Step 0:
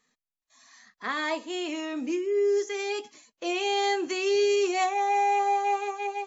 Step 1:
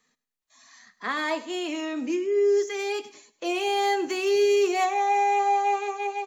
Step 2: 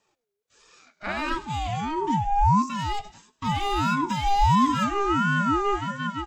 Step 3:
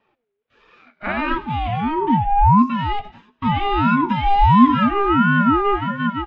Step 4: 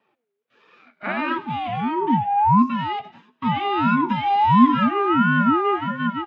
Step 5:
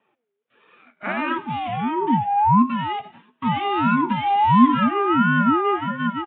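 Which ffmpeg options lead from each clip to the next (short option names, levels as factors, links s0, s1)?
-filter_complex "[0:a]acrossover=split=250|1000|2300[s0][s1][s2][s3];[s3]asoftclip=type=tanh:threshold=0.0188[s4];[s0][s1][s2][s4]amix=inputs=4:normalize=0,aecho=1:1:101|202|303:0.126|0.0466|0.0172,volume=1.26"
-af "lowshelf=f=420:g=9.5,aeval=exprs='val(0)*sin(2*PI*530*n/s+530*0.25/1.5*sin(2*PI*1.5*n/s))':c=same"
-af "lowpass=f=3000:w=0.5412,lowpass=f=3000:w=1.3066,equalizer=f=240:t=o:w=0.23:g=7.5,volume=2"
-af "highpass=f=140:w=0.5412,highpass=f=140:w=1.3066,volume=0.794"
-af "aresample=8000,aresample=44100"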